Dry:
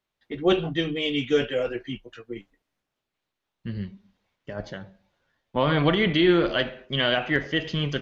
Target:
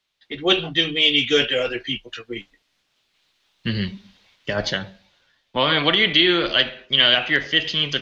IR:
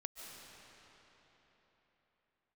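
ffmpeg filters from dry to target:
-filter_complex "[0:a]equalizer=f=3.9k:w=0.54:g=14.5,acrossover=split=210[a][b];[a]alimiter=level_in=7.5dB:limit=-24dB:level=0:latency=1,volume=-7.5dB[c];[c][b]amix=inputs=2:normalize=0,dynaudnorm=f=670:g=3:m=10.5dB,volume=-1dB"

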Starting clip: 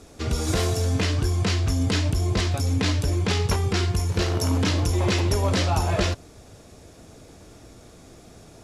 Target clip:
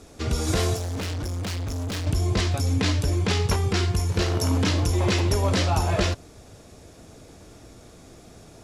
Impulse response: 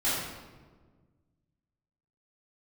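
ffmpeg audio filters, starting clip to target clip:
-filter_complex "[0:a]asettb=1/sr,asplit=3[a][b][c];[a]atrim=end=0.764[d];[b]atrim=start=0.76:end=2.07,asetpts=PTS-STARTPTS,afade=t=in:d=0.004:c=qsin,afade=t=out:st=1.306:d=0.004:c=qsin,asoftclip=type=hard:threshold=-27.5dB[e];[c]atrim=start=2.066[f];[d][e]acrossfade=d=0.004:c1=hsin:c2=qsin[g];[g][f]acrossfade=d=0.004:c1=qsin:c2=hsin"

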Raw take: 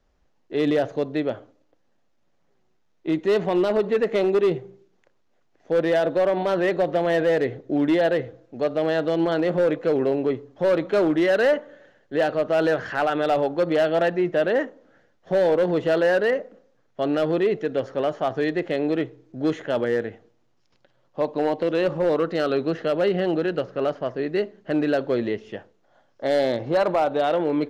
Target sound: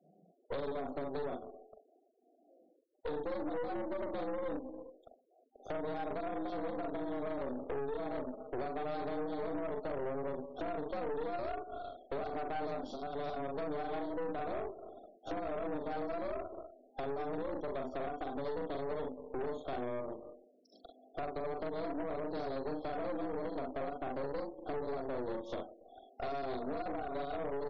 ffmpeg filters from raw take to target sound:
-filter_complex "[0:a]acrossover=split=210[a][b];[b]acompressor=threshold=-33dB:ratio=10[c];[a][c]amix=inputs=2:normalize=0,asplit=2[d][e];[e]aecho=0:1:42|65:0.668|0.355[f];[d][f]amix=inputs=2:normalize=0,acompressor=threshold=-40dB:ratio=10,highpass=f=98:p=1,afreqshift=130,afftfilt=real='re*(1-between(b*sr/4096,800,3200))':imag='im*(1-between(b*sr/4096,800,3200))':win_size=4096:overlap=0.75,aeval=exprs='(tanh(178*val(0)+0.75)-tanh(0.75))/178':c=same,asplit=2[g][h];[h]aecho=0:1:284:0.0631[i];[g][i]amix=inputs=2:normalize=0,afftfilt=real='re*gte(hypot(re,im),0.000398)':imag='im*gte(hypot(re,im),0.000398)':win_size=1024:overlap=0.75,volume=11dB"

